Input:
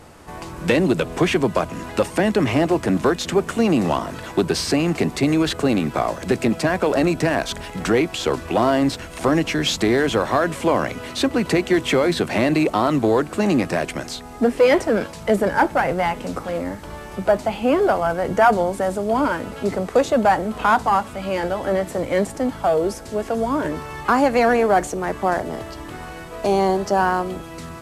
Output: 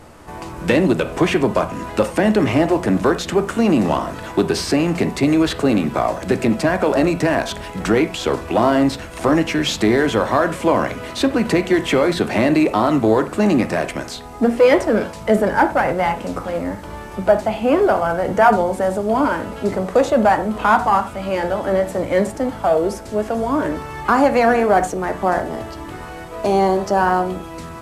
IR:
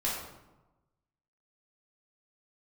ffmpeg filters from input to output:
-filter_complex "[0:a]asplit=2[a][b];[1:a]atrim=start_sample=2205,afade=t=out:st=0.15:d=0.01,atrim=end_sample=7056,lowpass=2.8k[c];[b][c]afir=irnorm=-1:irlink=0,volume=-11.5dB[d];[a][d]amix=inputs=2:normalize=0"

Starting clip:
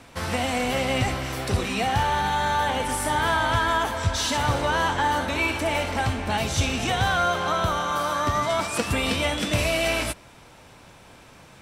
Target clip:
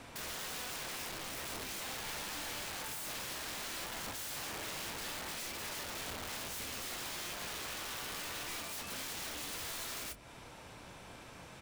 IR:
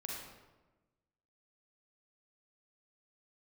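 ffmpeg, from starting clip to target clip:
-filter_complex "[0:a]bandreject=f=50:t=h:w=6,bandreject=f=100:t=h:w=6,bandreject=f=150:t=h:w=6,bandreject=f=200:t=h:w=6,bandreject=f=250:t=h:w=6,acompressor=threshold=-35dB:ratio=5,aeval=exprs='(mod(53.1*val(0)+1,2)-1)/53.1':c=same,asplit=2[a][b];[b]adelay=27,volume=-12.5dB[c];[a][c]amix=inputs=2:normalize=0,volume=-3dB"

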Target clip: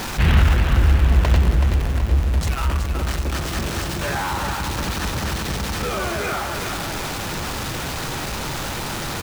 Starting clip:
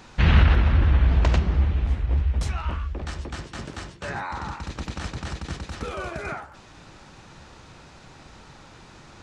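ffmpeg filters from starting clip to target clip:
-af "aeval=exprs='val(0)+0.5*0.0708*sgn(val(0))':c=same,aecho=1:1:376|752|1128|1504|1880|2256|2632:0.447|0.259|0.15|0.0872|0.0505|0.0293|0.017"

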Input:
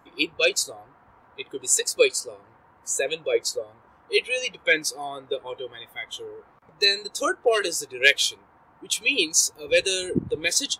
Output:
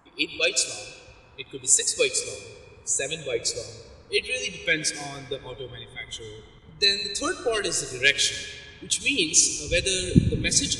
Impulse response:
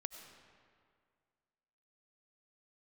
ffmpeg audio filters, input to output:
-filter_complex "[0:a]asubboost=boost=6:cutoff=220,asplit=2[a][b];[1:a]atrim=start_sample=2205,lowshelf=f=150:g=11,highshelf=f=3.4k:g=11[c];[b][c]afir=irnorm=-1:irlink=0,volume=5.5dB[d];[a][d]amix=inputs=2:normalize=0,aresample=22050,aresample=44100,volume=-11dB"

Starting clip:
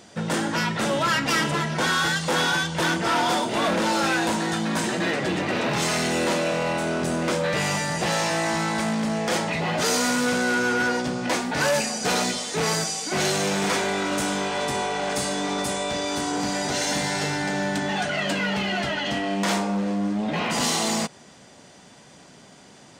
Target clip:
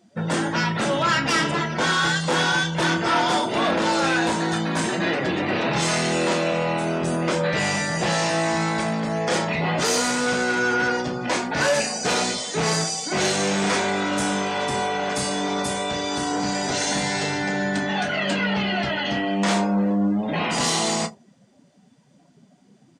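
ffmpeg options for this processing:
-filter_complex "[0:a]asplit=2[a][b];[b]aecho=0:1:30|80:0.376|0.126[c];[a][c]amix=inputs=2:normalize=0,afftdn=nr=18:nf=-39,volume=1dB"

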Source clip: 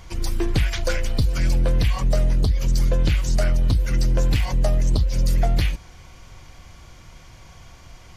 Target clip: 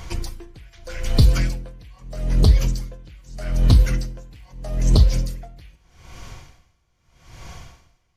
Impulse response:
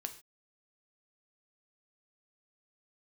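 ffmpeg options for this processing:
-filter_complex "[0:a]asplit=2[a][b];[1:a]atrim=start_sample=2205[c];[b][c]afir=irnorm=-1:irlink=0,volume=6.5dB[d];[a][d]amix=inputs=2:normalize=0,aeval=exprs='val(0)*pow(10,-31*(0.5-0.5*cos(2*PI*0.8*n/s))/20)':c=same,volume=-1.5dB"

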